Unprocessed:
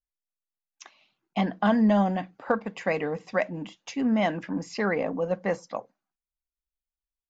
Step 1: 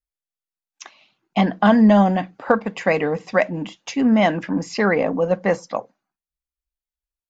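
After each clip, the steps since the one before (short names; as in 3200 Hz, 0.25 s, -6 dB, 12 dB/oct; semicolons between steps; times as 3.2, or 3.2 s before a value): spectral noise reduction 11 dB; gain +8 dB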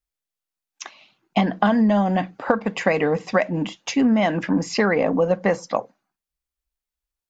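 compressor 10:1, threshold -18 dBFS, peak gain reduction 9.5 dB; gain +3.5 dB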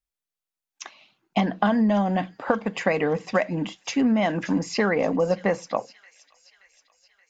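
thin delay 0.576 s, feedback 58%, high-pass 3300 Hz, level -13 dB; gain -3 dB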